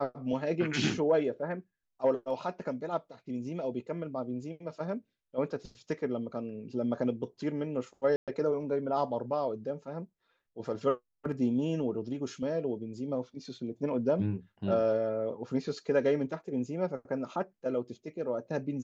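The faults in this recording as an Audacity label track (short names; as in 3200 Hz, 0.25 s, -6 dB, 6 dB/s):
8.160000	8.280000	gap 0.117 s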